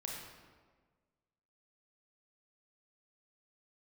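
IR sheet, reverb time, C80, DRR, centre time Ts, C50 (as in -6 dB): 1.5 s, 3.0 dB, -2.0 dB, 74 ms, 0.5 dB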